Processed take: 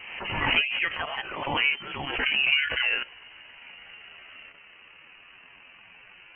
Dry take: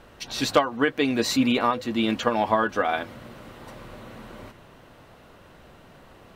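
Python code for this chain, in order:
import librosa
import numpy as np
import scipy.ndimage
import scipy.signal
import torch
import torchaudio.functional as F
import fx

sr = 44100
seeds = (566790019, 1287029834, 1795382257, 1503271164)

p1 = fx.pitch_glide(x, sr, semitones=12.0, runs='starting unshifted')
p2 = scipy.signal.sosfilt(scipy.signal.butter(6, 800.0, 'highpass', fs=sr, output='sos'), p1)
p3 = fx.high_shelf(p2, sr, hz=2500.0, db=-10.5)
p4 = fx.level_steps(p3, sr, step_db=20)
p5 = p3 + F.gain(torch.from_numpy(p4), 2.5).numpy()
p6 = fx.freq_invert(p5, sr, carrier_hz=3700)
y = fx.pre_swell(p6, sr, db_per_s=42.0)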